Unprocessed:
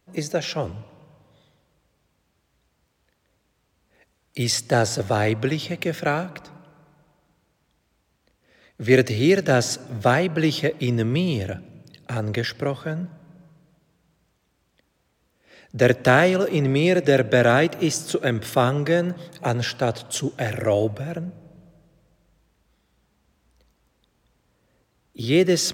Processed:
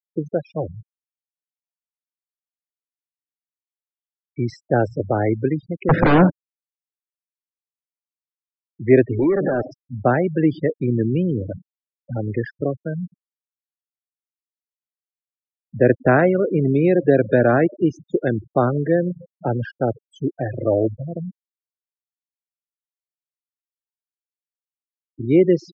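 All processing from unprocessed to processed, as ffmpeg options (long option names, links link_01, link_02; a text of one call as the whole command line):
ffmpeg -i in.wav -filter_complex "[0:a]asettb=1/sr,asplit=3[link_01][link_02][link_03];[link_01]atrim=end=5.894[link_04];[link_02]atrim=start=5.89:end=6.3,asetpts=PTS-STARTPTS,afade=type=in:duration=0.004:curve=qsin,afade=type=out:start_time=0.406:duration=0.004:curve=qsin,aeval=exprs='0.355*sin(PI/2*5.62*val(0)/0.355)':channel_layout=same,highshelf=frequency=3300:gain=-8.5[link_05];[link_03]atrim=start=6.296[link_06];[link_04][link_05]acrossfade=duration=0.004:curve1=hsin:curve2=qsin[link_07];[link_07][link_06]acrossfade=duration=0.004:curve1=qsin:curve2=hsin,asettb=1/sr,asplit=3[link_08][link_09][link_10];[link_08]atrim=end=9.194[link_11];[link_09]atrim=start=9.19:end=9.72,asetpts=PTS-STARTPTS,afade=type=in:duration=0.004:curve=qsin,afade=type=out:start_time=0.526:duration=0.004:curve=qsin,highshelf=frequency=3700:gain=-4,acompressor=threshold=-20dB:ratio=10:attack=3.2:release=140:knee=1:detection=peak,asplit=2[link_12][link_13];[link_13]highpass=frequency=720:poles=1,volume=30dB,asoftclip=type=tanh:threshold=-13dB[link_14];[link_12][link_14]amix=inputs=2:normalize=0,lowpass=frequency=1200:poles=1,volume=-6dB[link_15];[link_10]atrim=start=9.716[link_16];[link_11][link_15]acrossfade=duration=0.004:curve1=hsin:curve2=qsin[link_17];[link_17][link_16]acrossfade=duration=0.004:curve1=qsin:curve2=hsin,afftfilt=real='re*gte(hypot(re,im),0.112)':imag='im*gte(hypot(re,im),0.112)':win_size=1024:overlap=0.75,lowpass=1700,equalizer=frequency=300:width=1.1:gain=4.5" out.wav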